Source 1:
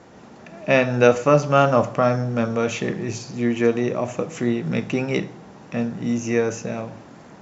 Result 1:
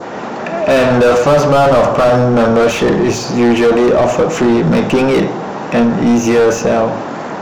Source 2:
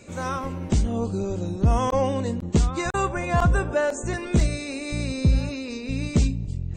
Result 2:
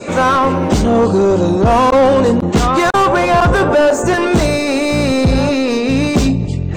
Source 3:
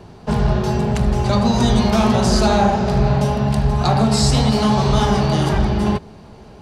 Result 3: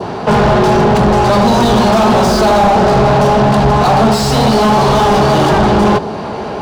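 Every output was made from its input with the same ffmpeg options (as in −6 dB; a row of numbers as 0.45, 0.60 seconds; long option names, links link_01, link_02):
-filter_complex "[0:a]asplit=2[link_01][link_02];[link_02]highpass=frequency=720:poles=1,volume=35dB,asoftclip=type=tanh:threshold=-1dB[link_03];[link_01][link_03]amix=inputs=2:normalize=0,lowpass=frequency=1400:poles=1,volume=-6dB,adynamicequalizer=threshold=0.0282:dfrequency=2100:dqfactor=1.5:tfrequency=2100:tqfactor=1.5:attack=5:release=100:ratio=0.375:range=3:mode=cutabove:tftype=bell"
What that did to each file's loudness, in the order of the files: +9.5, +12.0, +7.0 LU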